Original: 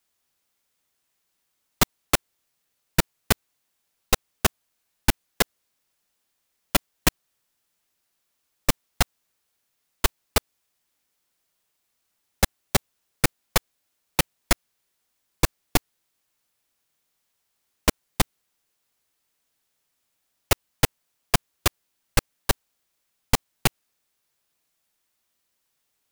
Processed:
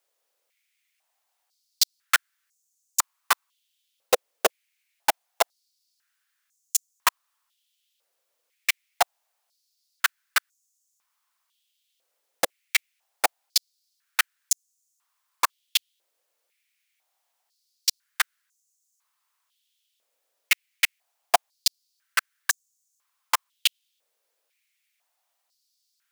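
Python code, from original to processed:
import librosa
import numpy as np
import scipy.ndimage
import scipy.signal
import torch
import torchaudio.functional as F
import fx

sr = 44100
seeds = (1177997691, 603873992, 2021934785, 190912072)

y = fx.buffer_crackle(x, sr, first_s=0.85, period_s=0.13, block=256, kind='repeat')
y = fx.filter_held_highpass(y, sr, hz=2.0, low_hz=510.0, high_hz=6700.0)
y = F.gain(torch.from_numpy(y), -2.0).numpy()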